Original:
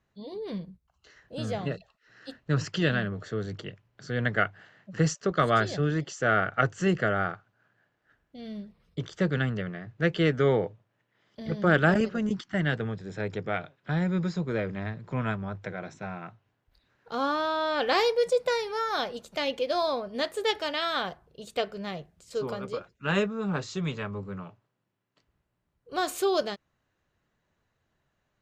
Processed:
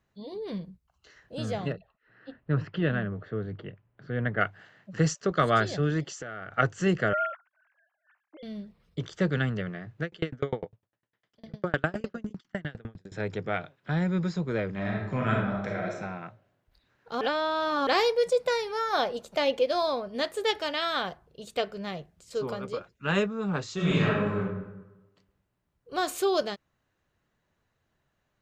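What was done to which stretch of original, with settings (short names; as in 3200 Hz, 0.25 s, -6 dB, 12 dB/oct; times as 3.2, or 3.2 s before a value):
1.72–4.41 air absorption 470 m
6.09–6.51 compressor 12:1, threshold -34 dBFS
7.13–8.43 sine-wave speech
10.02–13.12 dB-ramp tremolo decaying 9.9 Hz, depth 34 dB
14.73–15.93 reverb throw, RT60 0.91 s, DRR -2.5 dB
17.21–17.87 reverse
18.93–19.66 bell 630 Hz +5.5 dB 1.6 oct
23.75–24.38 reverb throw, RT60 1.1 s, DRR -8.5 dB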